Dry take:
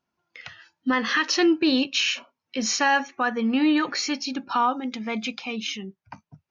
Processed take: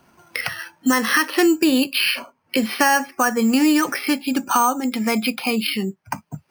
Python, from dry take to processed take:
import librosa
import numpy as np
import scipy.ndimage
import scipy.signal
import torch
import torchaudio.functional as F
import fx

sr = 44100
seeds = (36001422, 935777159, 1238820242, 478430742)

y = np.repeat(scipy.signal.resample_poly(x, 1, 6), 6)[:len(x)]
y = fx.band_squash(y, sr, depth_pct=70)
y = y * librosa.db_to_amplitude(5.0)